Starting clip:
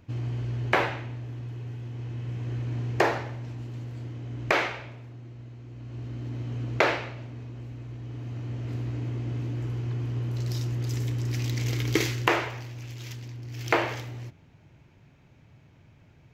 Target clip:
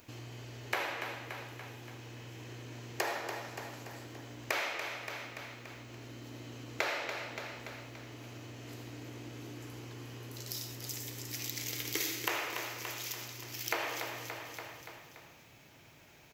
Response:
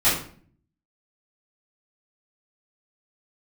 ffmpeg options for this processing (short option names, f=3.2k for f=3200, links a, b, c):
-filter_complex "[0:a]aemphasis=mode=production:type=75fm,aecho=1:1:287|574|861|1148|1435:0.237|0.119|0.0593|0.0296|0.0148,asplit=2[a][b];[1:a]atrim=start_sample=2205,adelay=58[c];[b][c]afir=irnorm=-1:irlink=0,volume=-23.5dB[d];[a][d]amix=inputs=2:normalize=0,acompressor=threshold=-41dB:ratio=2.5,bass=f=250:g=-14,treble=f=4k:g=0,volume=3dB"